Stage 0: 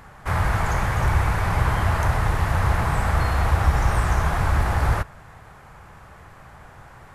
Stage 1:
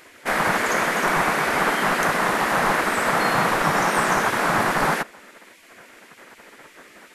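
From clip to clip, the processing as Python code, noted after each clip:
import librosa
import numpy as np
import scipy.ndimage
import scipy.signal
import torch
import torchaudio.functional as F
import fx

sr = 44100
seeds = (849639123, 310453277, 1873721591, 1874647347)

y = fx.spec_gate(x, sr, threshold_db=-15, keep='weak')
y = y * librosa.db_to_amplitude(8.0)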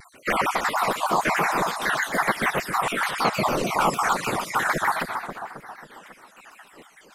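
y = fx.spec_dropout(x, sr, seeds[0], share_pct=73)
y = fx.echo_split(y, sr, split_hz=1600.0, low_ms=272, high_ms=122, feedback_pct=52, wet_db=-6.5)
y = fx.vibrato_shape(y, sr, shape='saw_down', rate_hz=6.6, depth_cents=250.0)
y = y * librosa.db_to_amplitude(2.0)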